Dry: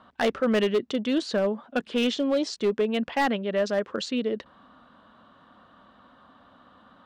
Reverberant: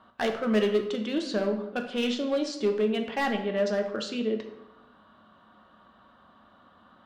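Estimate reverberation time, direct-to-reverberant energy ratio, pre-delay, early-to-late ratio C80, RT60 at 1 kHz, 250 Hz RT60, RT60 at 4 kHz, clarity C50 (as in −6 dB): 0.90 s, 3.5 dB, 3 ms, 10.5 dB, 0.90 s, 1.0 s, 0.60 s, 8.0 dB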